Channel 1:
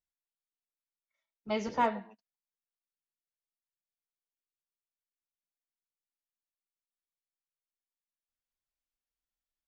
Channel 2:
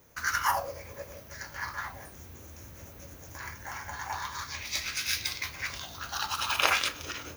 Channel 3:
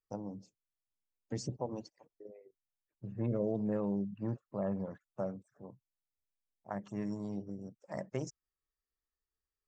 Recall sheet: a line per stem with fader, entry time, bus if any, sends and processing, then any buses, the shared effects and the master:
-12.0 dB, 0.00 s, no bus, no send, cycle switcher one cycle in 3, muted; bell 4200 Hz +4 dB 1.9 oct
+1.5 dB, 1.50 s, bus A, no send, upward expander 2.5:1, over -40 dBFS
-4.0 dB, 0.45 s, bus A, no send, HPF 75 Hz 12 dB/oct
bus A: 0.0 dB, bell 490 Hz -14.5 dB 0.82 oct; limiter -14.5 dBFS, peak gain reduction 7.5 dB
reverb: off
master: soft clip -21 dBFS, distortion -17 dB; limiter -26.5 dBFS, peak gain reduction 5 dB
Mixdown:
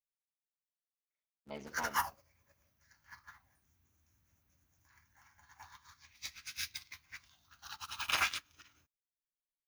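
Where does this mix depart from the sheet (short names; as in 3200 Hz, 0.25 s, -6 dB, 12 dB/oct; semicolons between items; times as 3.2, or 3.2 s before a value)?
stem 1: missing bell 4200 Hz +4 dB 1.9 oct; stem 3: muted; master: missing limiter -26.5 dBFS, peak gain reduction 5 dB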